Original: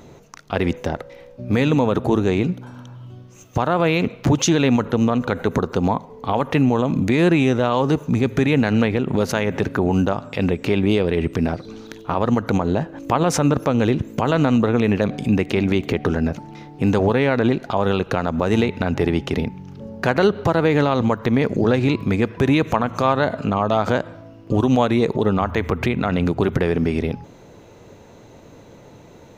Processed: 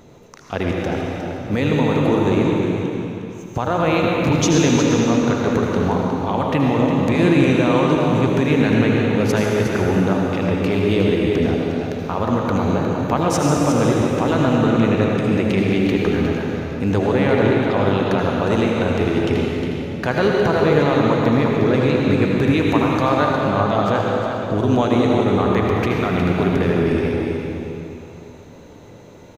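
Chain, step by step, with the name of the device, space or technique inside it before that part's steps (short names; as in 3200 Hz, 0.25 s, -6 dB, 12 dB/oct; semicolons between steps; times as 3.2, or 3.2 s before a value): cave (echo 0.359 s -8.5 dB; reverb RT60 2.9 s, pre-delay 70 ms, DRR -1.5 dB); gain -2.5 dB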